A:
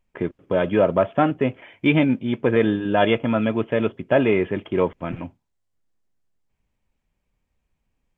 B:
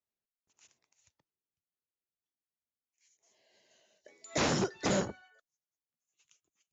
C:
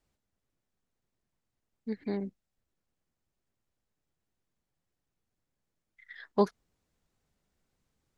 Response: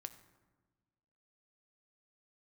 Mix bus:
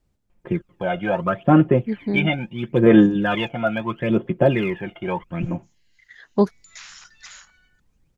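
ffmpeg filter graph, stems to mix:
-filter_complex "[0:a]aecho=1:1:5.7:0.63,aphaser=in_gain=1:out_gain=1:delay=1.4:decay=0.73:speed=0.75:type=sinusoidal,adelay=300,volume=-4dB[a];[1:a]highpass=f=1.4k:w=0.5412,highpass=f=1.4k:w=1.3066,acompressor=threshold=-42dB:ratio=3,adelay=2400,volume=1dB[b];[2:a]lowshelf=f=400:g=11.5,volume=1.5dB[c];[a][b][c]amix=inputs=3:normalize=0"

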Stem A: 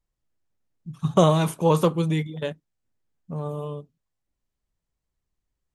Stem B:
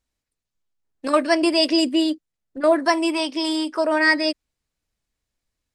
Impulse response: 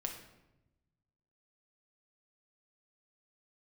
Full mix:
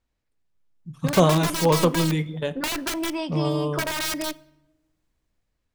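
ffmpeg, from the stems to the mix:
-filter_complex "[0:a]dynaudnorm=f=220:g=7:m=11dB,volume=-7dB,asplit=2[a][b];[b]volume=-10.5dB[c];[1:a]aemphasis=mode=reproduction:type=75fm,aeval=exprs='(mod(5.96*val(0)+1,2)-1)/5.96':c=same,acompressor=threshold=-29dB:ratio=6,volume=1.5dB,asplit=2[d][e];[e]volume=-14dB[f];[2:a]atrim=start_sample=2205[g];[c][f]amix=inputs=2:normalize=0[h];[h][g]afir=irnorm=-1:irlink=0[i];[a][d][i]amix=inputs=3:normalize=0"

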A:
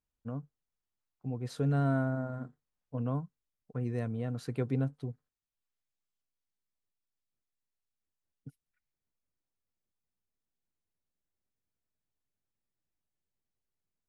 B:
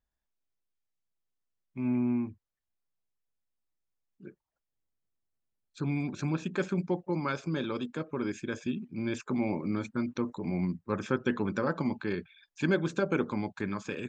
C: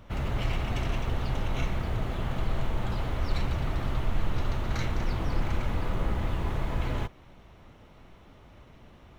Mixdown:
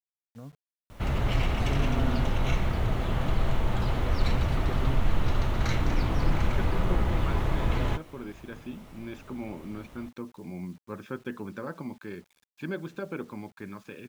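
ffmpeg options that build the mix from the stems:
-filter_complex "[0:a]adelay=100,volume=-6dB[a];[1:a]lowpass=4.4k,volume=-7dB[b];[2:a]adelay=900,volume=3dB[c];[a][b][c]amix=inputs=3:normalize=0,acrusher=bits=9:mix=0:aa=0.000001"

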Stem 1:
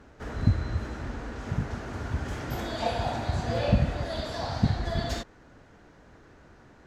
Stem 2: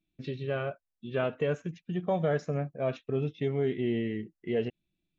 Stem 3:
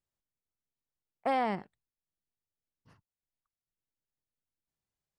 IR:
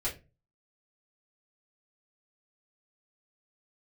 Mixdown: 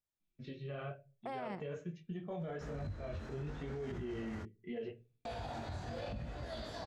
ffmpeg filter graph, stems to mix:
-filter_complex "[0:a]adelay=2400,volume=-7.5dB,asplit=3[a][b][c];[a]atrim=end=4.43,asetpts=PTS-STARTPTS,afade=t=out:st=4.426:d=0.004:c=hsin[d];[b]atrim=start=4.43:end=5.25,asetpts=PTS-STARTPTS,volume=0[e];[c]atrim=start=5.25,asetpts=PTS-STARTPTS,afade=t=in:d=0.004:c=hsin[f];[d][e][f]concat=n=3:v=0:a=1[g];[1:a]flanger=delay=4.1:depth=9:regen=-34:speed=1.1:shape=sinusoidal,adelay=200,volume=-4.5dB,asplit=2[h][i];[i]volume=-11dB[j];[2:a]volume=-6.5dB[k];[g][h]amix=inputs=2:normalize=0,flanger=delay=16.5:depth=6.4:speed=0.78,alimiter=level_in=4dB:limit=-24dB:level=0:latency=1:release=384,volume=-4dB,volume=0dB[l];[3:a]atrim=start_sample=2205[m];[j][m]afir=irnorm=-1:irlink=0[n];[k][l][n]amix=inputs=3:normalize=0,alimiter=level_in=10dB:limit=-24dB:level=0:latency=1:release=40,volume=-10dB"

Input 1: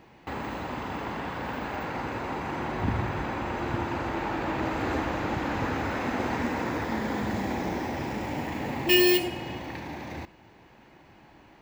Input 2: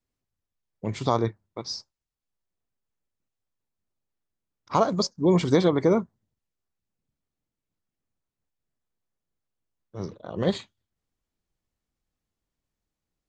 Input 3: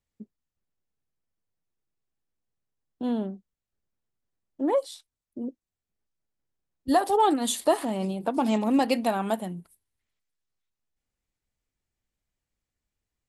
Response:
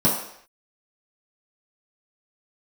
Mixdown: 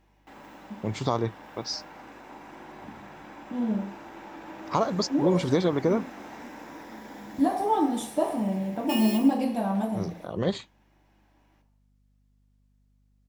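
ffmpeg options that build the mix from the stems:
-filter_complex "[0:a]highpass=f=500:p=1,aemphasis=mode=production:type=cd,volume=-15.5dB,asplit=2[a][b];[b]volume=-17dB[c];[1:a]acompressor=threshold=-28dB:ratio=1.5,aeval=exprs='val(0)+0.000562*(sin(2*PI*50*n/s)+sin(2*PI*2*50*n/s)/2+sin(2*PI*3*50*n/s)/3+sin(2*PI*4*50*n/s)/4+sin(2*PI*5*50*n/s)/5)':c=same,volume=1dB[d];[2:a]adelay=500,volume=-15dB,asplit=2[e][f];[f]volume=-9dB[g];[3:a]atrim=start_sample=2205[h];[c][g]amix=inputs=2:normalize=0[i];[i][h]afir=irnorm=-1:irlink=0[j];[a][d][e][j]amix=inputs=4:normalize=0"

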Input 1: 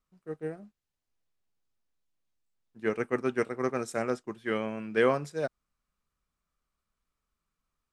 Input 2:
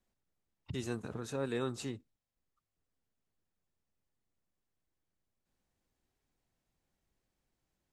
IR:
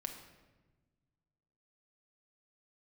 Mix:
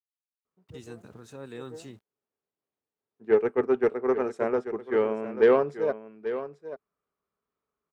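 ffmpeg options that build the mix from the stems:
-filter_complex "[0:a]bandpass=f=530:t=q:w=0.55:csg=0,equalizer=f=420:t=o:w=0.22:g=10.5,aeval=exprs='0.251*(cos(1*acos(clip(val(0)/0.251,-1,1)))-cos(1*PI/2))+0.0112*(cos(6*acos(clip(val(0)/0.251,-1,1)))-cos(6*PI/2))':c=same,adelay=450,volume=-0.5dB,asplit=2[a][b];[b]volume=-12dB[c];[1:a]aeval=exprs='val(0)*gte(abs(val(0)),0.00141)':c=same,volume=-7dB,asplit=2[d][e];[e]apad=whole_len=369322[f];[a][f]sidechaincompress=threshold=-55dB:ratio=8:attack=16:release=213[g];[c]aecho=0:1:837:1[h];[g][d][h]amix=inputs=3:normalize=0,highpass=54,dynaudnorm=f=700:g=5:m=3.5dB"

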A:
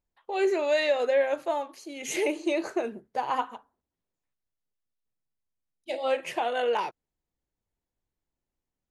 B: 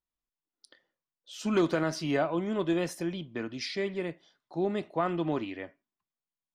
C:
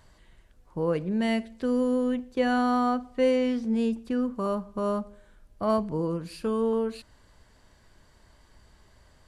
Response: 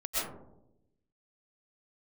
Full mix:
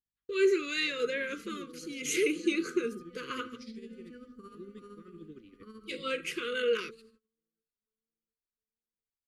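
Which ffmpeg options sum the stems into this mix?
-filter_complex "[0:a]bandreject=f=1.8k:w=7.7,volume=1dB,asplit=2[a][b];[1:a]equalizer=f=1.6k:w=0.51:g=-10,aeval=exprs='val(0)+0.002*(sin(2*PI*50*n/s)+sin(2*PI*2*50*n/s)/2+sin(2*PI*3*50*n/s)/3+sin(2*PI*4*50*n/s)/4+sin(2*PI*5*50*n/s)/5)':c=same,volume=-10dB[c];[2:a]bandreject=f=50:t=h:w=6,bandreject=f=100:t=h:w=6,bandreject=f=150:t=h:w=6,bandreject=f=200:t=h:w=6,bandreject=f=250:t=h:w=6,bandreject=f=300:t=h:w=6,bandreject=f=350:t=h:w=6,bandreject=f=400:t=h:w=6,bandreject=f=450:t=h:w=6,volume=-13.5dB,asplit=3[d][e][f];[e]volume=-19.5dB[g];[f]volume=-19dB[h];[b]apad=whole_len=409200[i];[d][i]sidechaincompress=threshold=-37dB:ratio=8:attack=16:release=137[j];[c][j]amix=inputs=2:normalize=0,tremolo=f=13:d=0.73,alimiter=level_in=11dB:limit=-24dB:level=0:latency=1:release=250,volume=-11dB,volume=0dB[k];[3:a]atrim=start_sample=2205[l];[g][l]afir=irnorm=-1:irlink=0[m];[h]aecho=0:1:708|1416|2124|2832|3540|4248|4956:1|0.47|0.221|0.104|0.0488|0.0229|0.0108[n];[a][k][m][n]amix=inputs=4:normalize=0,agate=range=-30dB:threshold=-54dB:ratio=16:detection=peak,asuperstop=centerf=760:order=12:qfactor=1.1,lowshelf=f=150:g=-5.5"

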